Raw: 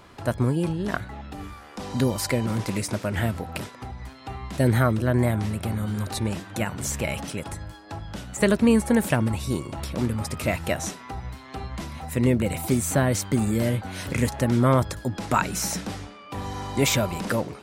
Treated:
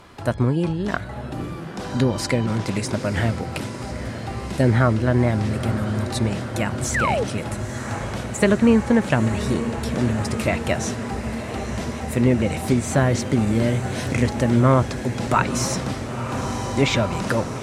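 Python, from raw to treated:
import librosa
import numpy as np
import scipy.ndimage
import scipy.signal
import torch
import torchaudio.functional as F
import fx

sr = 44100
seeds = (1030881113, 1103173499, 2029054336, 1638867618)

y = fx.spec_paint(x, sr, seeds[0], shape='fall', start_s=6.94, length_s=0.3, low_hz=410.0, high_hz=2100.0, level_db=-25.0)
y = fx.env_lowpass_down(y, sr, base_hz=2800.0, full_db=-15.0)
y = fx.echo_diffused(y, sr, ms=950, feedback_pct=78, wet_db=-11)
y = F.gain(torch.from_numpy(y), 3.0).numpy()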